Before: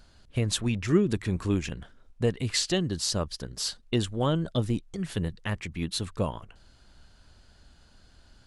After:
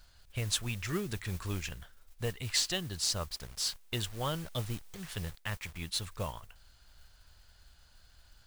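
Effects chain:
0:03.29–0:05.78: hold until the input has moved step −41.5 dBFS
parametric band 270 Hz −13.5 dB 2.1 octaves
noise that follows the level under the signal 16 dB
level −2 dB

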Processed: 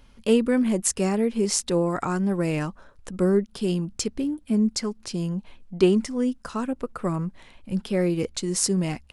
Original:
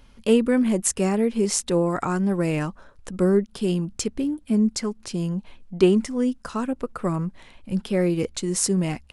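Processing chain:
dynamic equaliser 4,800 Hz, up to +4 dB, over −45 dBFS, Q 2.1
level −1.5 dB

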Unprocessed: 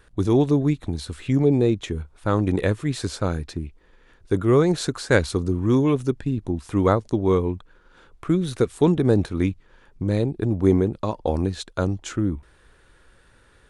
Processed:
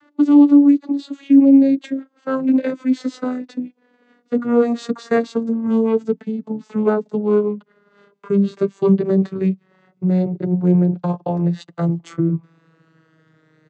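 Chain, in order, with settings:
vocoder with a gliding carrier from D4, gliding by −11 semitones
in parallel at −2 dB: brickwall limiter −18.5 dBFS, peak gain reduction 11 dB
on the sum: comb filter 6.9 ms, depth 38%
level +2 dB

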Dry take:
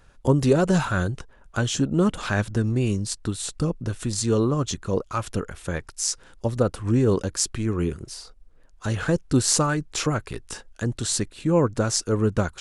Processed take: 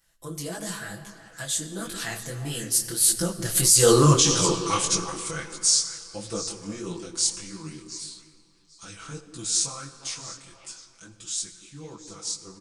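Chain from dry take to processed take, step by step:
source passing by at 0:04.05, 39 m/s, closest 8.5 metres
first-order pre-emphasis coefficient 0.9
comb filter 6 ms, depth 98%
echo through a band-pass that steps 177 ms, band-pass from 290 Hz, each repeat 1.4 octaves, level −6 dB
on a send at −11 dB: convolution reverb RT60 2.8 s, pre-delay 39 ms
on the sum: boost into a limiter +29.5 dB
micro pitch shift up and down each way 55 cents
level −2 dB

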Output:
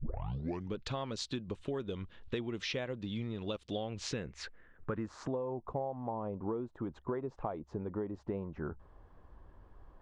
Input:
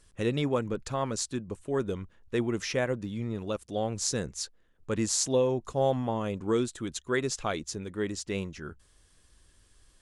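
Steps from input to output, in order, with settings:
turntable start at the beginning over 0.75 s
low-pass filter sweep 3,600 Hz → 900 Hz, 0:03.68–0:05.64
dynamic equaliser 1,600 Hz, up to −3 dB, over −45 dBFS, Q 1.3
downward compressor 12 to 1, threshold −40 dBFS, peak gain reduction 23 dB
level +6 dB

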